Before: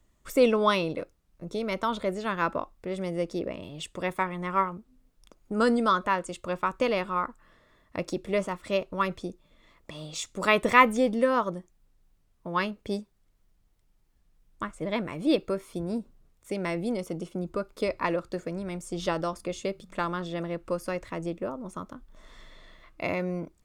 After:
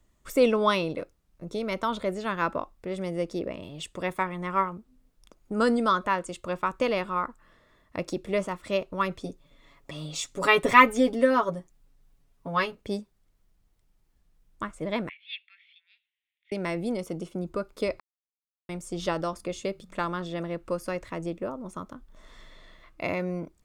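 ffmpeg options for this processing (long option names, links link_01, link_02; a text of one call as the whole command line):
ffmpeg -i in.wav -filter_complex "[0:a]asettb=1/sr,asplit=3[link_01][link_02][link_03];[link_01]atrim=end=9.234[link_04];[link_02]atrim=start=9.23:end=12.75,asetpts=PTS-STARTPTS,afade=type=in:duration=0.004:curve=qsin,afade=type=out:start_time=3.516:duration=0.004:curve=qsin,aecho=1:1:7.2:0.8,atrim=end_sample=155232[link_05];[link_03]atrim=start=12.746[link_06];[link_04][link_05]acrossfade=duration=0.004:curve1=hsin:curve2=qsin[link_07];[link_07][link_06]acrossfade=duration=0.004:curve1=qsin:curve2=hsin,asettb=1/sr,asplit=3[link_08][link_09][link_10];[link_08]atrim=end=15.094[link_11];[link_09]atrim=start=15.09:end=16.52,asetpts=PTS-STARTPTS,afade=type=in:duration=0.004:curve=qsin,afade=type=out:start_time=1.426:duration=0.004:curve=qsin,asuperpass=centerf=2600:order=8:qfactor=1.5[link_12];[link_10]atrim=start=16.516[link_13];[link_11][link_12]acrossfade=duration=0.004:curve1=hsin:curve2=qsin[link_14];[link_14][link_13]acrossfade=duration=0.004:curve1=qsin:curve2=hsin,asplit=3[link_15][link_16][link_17];[link_15]atrim=end=18,asetpts=PTS-STARTPTS,afade=type=out:start_time=17.996:duration=0.004:curve=hsin[link_18];[link_16]atrim=start=18:end=18.69,asetpts=PTS-STARTPTS,volume=0[link_19];[link_17]atrim=start=18.69,asetpts=PTS-STARTPTS,afade=type=in:duration=0.004:curve=hsin[link_20];[link_18][link_19][link_20]concat=n=3:v=0:a=1" out.wav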